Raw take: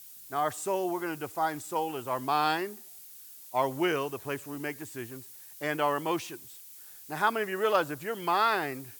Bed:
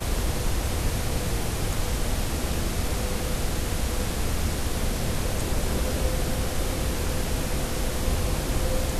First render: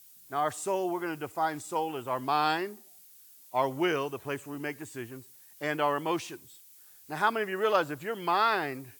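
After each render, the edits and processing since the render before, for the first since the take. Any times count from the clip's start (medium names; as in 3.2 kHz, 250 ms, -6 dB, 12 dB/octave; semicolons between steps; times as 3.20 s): noise print and reduce 6 dB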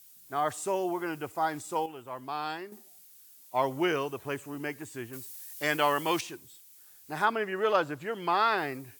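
1.86–2.72 s: gain -8 dB; 5.13–6.21 s: treble shelf 2.1 kHz +10.5 dB; 7.24–8.57 s: treble shelf 7 kHz -> 11 kHz -10 dB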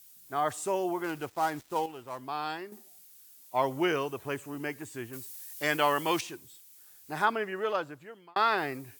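1.04–2.22 s: dead-time distortion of 0.074 ms; 7.26–8.36 s: fade out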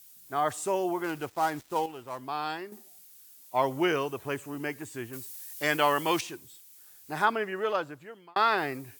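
trim +1.5 dB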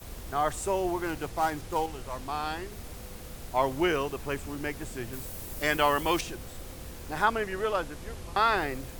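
add bed -16 dB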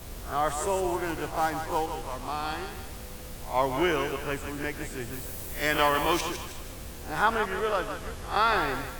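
reverse spectral sustain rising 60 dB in 0.31 s; thinning echo 157 ms, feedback 45%, high-pass 560 Hz, level -7 dB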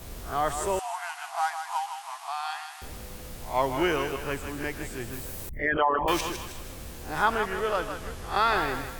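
0.79–2.82 s: brick-wall FIR band-pass 660–12000 Hz; 5.49–6.08 s: resonances exaggerated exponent 3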